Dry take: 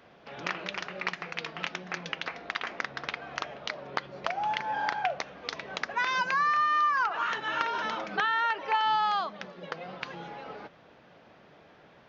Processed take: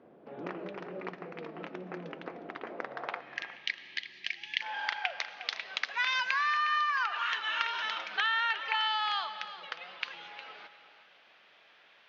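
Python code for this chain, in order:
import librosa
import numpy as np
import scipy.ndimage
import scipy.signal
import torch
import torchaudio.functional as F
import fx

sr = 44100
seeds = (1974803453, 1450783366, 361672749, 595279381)

p1 = fx.filter_sweep_bandpass(x, sr, from_hz=330.0, to_hz=3000.0, start_s=2.63, end_s=3.81, q=1.3)
p2 = fx.spec_box(p1, sr, start_s=3.2, length_s=1.41, low_hz=400.0, high_hz=1600.0, gain_db=-25)
p3 = p2 + fx.echo_single(p2, sr, ms=359, db=-13.5, dry=0)
p4 = fx.rev_freeverb(p3, sr, rt60_s=2.6, hf_ratio=0.75, predelay_ms=65, drr_db=15.0)
y = p4 * librosa.db_to_amplitude(4.5)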